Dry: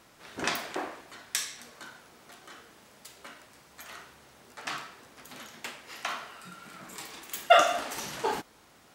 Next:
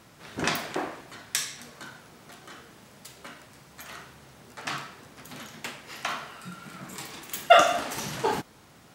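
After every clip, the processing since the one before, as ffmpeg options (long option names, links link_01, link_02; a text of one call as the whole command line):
ffmpeg -i in.wav -af "equalizer=frequency=130:width_type=o:width=1.6:gain=9,volume=2.5dB" out.wav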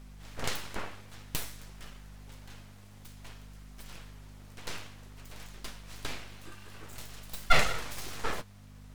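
ffmpeg -i in.wav -af "aeval=exprs='abs(val(0))':channel_layout=same,aeval=exprs='val(0)+0.00631*(sin(2*PI*50*n/s)+sin(2*PI*2*50*n/s)/2+sin(2*PI*3*50*n/s)/3+sin(2*PI*4*50*n/s)/4+sin(2*PI*5*50*n/s)/5)':channel_layout=same,flanger=delay=4.9:depth=5.3:regen=-55:speed=0.53:shape=triangular" out.wav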